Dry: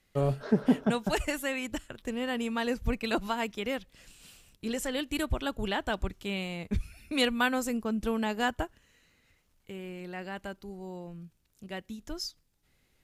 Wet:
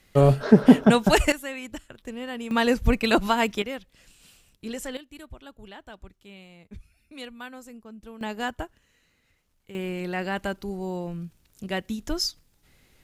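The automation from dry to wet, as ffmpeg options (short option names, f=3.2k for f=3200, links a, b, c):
-af "asetnsamples=n=441:p=0,asendcmd='1.32 volume volume -2dB;2.51 volume volume 9dB;3.62 volume volume -1dB;4.97 volume volume -13dB;8.21 volume volume -1dB;9.75 volume volume 10dB',volume=10.5dB"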